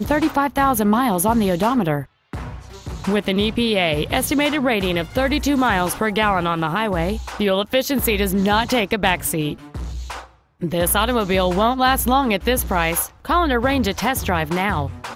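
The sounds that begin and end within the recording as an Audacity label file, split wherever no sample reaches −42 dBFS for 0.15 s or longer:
2.330000	10.350000	sound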